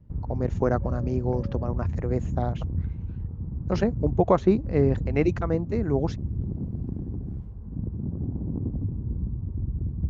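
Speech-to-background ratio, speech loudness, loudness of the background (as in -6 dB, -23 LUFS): 5.0 dB, -27.0 LUFS, -32.0 LUFS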